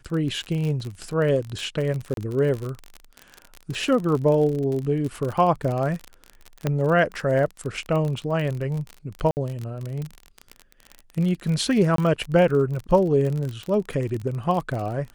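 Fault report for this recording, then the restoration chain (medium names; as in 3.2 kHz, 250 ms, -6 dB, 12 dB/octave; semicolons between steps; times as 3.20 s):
crackle 38 per s -27 dBFS
2.14–2.17 s: dropout 32 ms
6.67 s: pop -10 dBFS
9.31–9.37 s: dropout 59 ms
11.96–11.98 s: dropout 23 ms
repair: de-click; interpolate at 2.14 s, 32 ms; interpolate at 9.31 s, 59 ms; interpolate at 11.96 s, 23 ms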